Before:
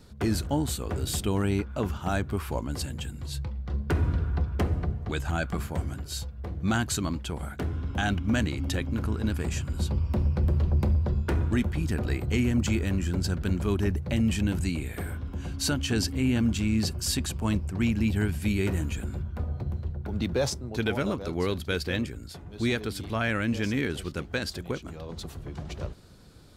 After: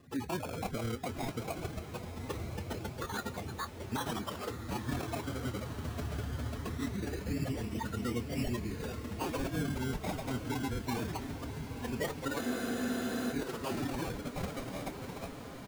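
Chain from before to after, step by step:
low-pass filter 3,700 Hz 12 dB per octave
gate on every frequency bin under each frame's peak −20 dB strong
spectral tilt +4.5 dB per octave
in parallel at +0.5 dB: downward compressor, threshold −43 dBFS, peak gain reduction 19 dB
on the sum: brickwall limiter −24.5 dBFS, peak gain reduction 11 dB
time stretch by overlap-add 0.59×, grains 55 ms
sample-and-hold swept by an LFO 23×, swing 60% 0.22 Hz
on a send: feedback delay with all-pass diffusion 999 ms, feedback 70%, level −10 dB
on the sum: phase-vocoder pitch shift with formants kept +3 semitones
double-tracking delay 25 ms −14 dB
frozen spectrum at 0:12.43, 0.88 s

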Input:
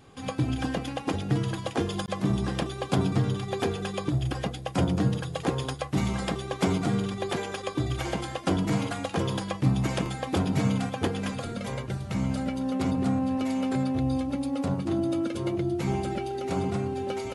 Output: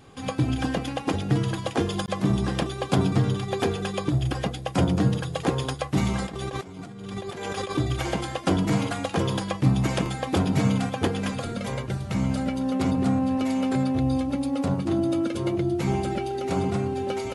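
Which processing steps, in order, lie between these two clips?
0:06.26–0:07.77: compressor whose output falls as the input rises −38 dBFS, ratio −1
level +3 dB

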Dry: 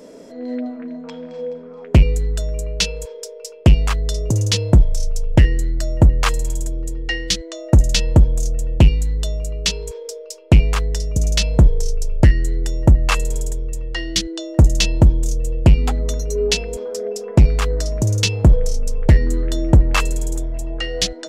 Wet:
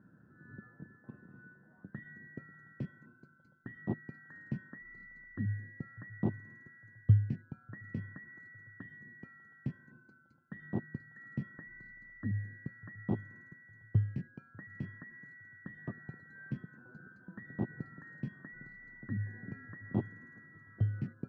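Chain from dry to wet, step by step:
frequency inversion band by band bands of 2,000 Hz
brickwall limiter −10 dBFS, peak gain reduction 11 dB
flat-topped band-pass 170 Hz, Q 1.3
level +10 dB

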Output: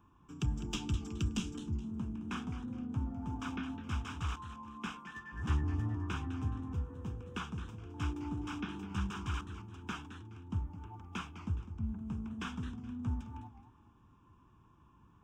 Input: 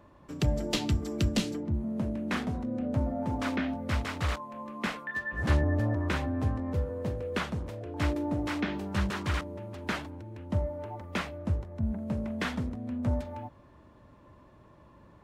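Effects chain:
phaser with its sweep stopped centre 2,900 Hz, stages 8
feedback echo with a swinging delay time 210 ms, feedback 31%, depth 172 cents, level −12 dB
level −6 dB

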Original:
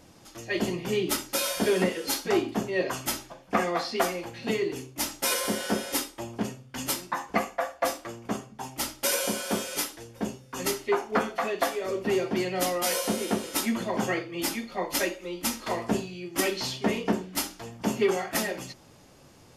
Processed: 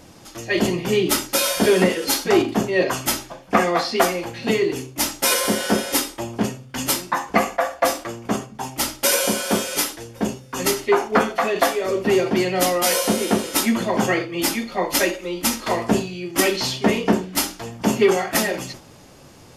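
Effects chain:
level that may fall only so fast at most 150 dB per second
level +8 dB

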